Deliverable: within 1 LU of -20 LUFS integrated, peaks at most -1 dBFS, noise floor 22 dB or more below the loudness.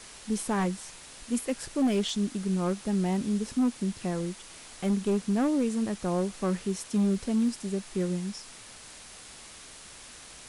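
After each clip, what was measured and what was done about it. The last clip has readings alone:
clipped 1.2%; flat tops at -20.5 dBFS; noise floor -48 dBFS; noise floor target -52 dBFS; loudness -29.5 LUFS; peak -20.5 dBFS; loudness target -20.0 LUFS
-> clip repair -20.5 dBFS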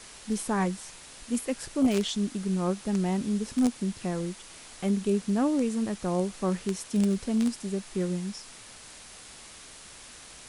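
clipped 0.0%; noise floor -48 dBFS; noise floor target -51 dBFS
-> denoiser 6 dB, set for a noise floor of -48 dBFS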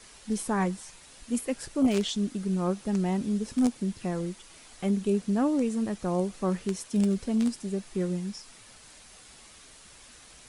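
noise floor -52 dBFS; loudness -29.0 LUFS; peak -11.5 dBFS; loudness target -20.0 LUFS
-> gain +9 dB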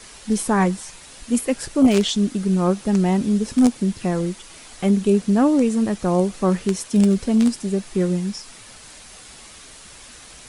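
loudness -20.0 LUFS; peak -2.5 dBFS; noise floor -43 dBFS

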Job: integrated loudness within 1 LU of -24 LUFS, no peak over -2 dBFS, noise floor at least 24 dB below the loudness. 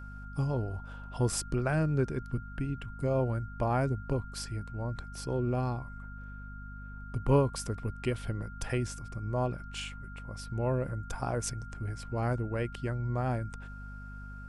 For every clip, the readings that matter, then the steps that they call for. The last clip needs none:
hum 50 Hz; harmonics up to 250 Hz; hum level -42 dBFS; steady tone 1400 Hz; tone level -48 dBFS; loudness -33.5 LUFS; peak -14.5 dBFS; loudness target -24.0 LUFS
-> notches 50/100/150/200/250 Hz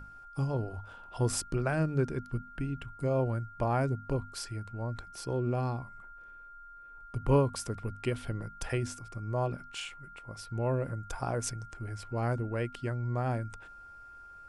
hum none; steady tone 1400 Hz; tone level -48 dBFS
-> notch 1400 Hz, Q 30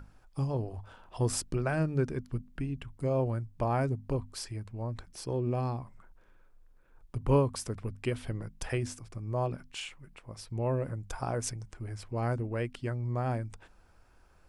steady tone none; loudness -34.0 LUFS; peak -15.0 dBFS; loudness target -24.0 LUFS
-> gain +10 dB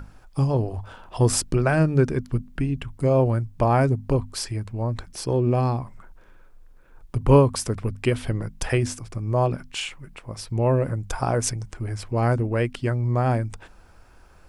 loudness -24.0 LUFS; peak -5.0 dBFS; noise floor -51 dBFS

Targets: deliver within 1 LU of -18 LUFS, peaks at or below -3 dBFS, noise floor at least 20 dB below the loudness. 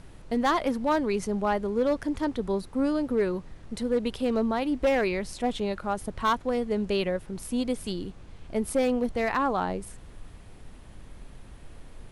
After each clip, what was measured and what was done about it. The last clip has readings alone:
clipped 0.7%; flat tops at -18.0 dBFS; noise floor -47 dBFS; noise floor target -48 dBFS; loudness -28.0 LUFS; peak -18.0 dBFS; loudness target -18.0 LUFS
-> clip repair -18 dBFS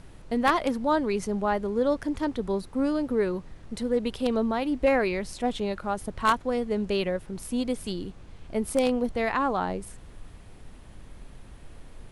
clipped 0.0%; noise floor -47 dBFS; noise floor target -48 dBFS
-> noise print and reduce 6 dB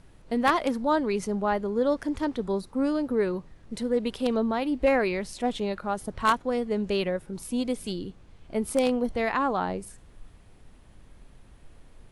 noise floor -53 dBFS; loudness -27.5 LUFS; peak -9.0 dBFS; loudness target -18.0 LUFS
-> gain +9.5 dB; limiter -3 dBFS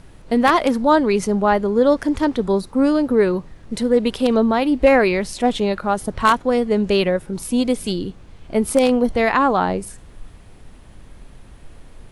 loudness -18.5 LUFS; peak -3.0 dBFS; noise floor -44 dBFS

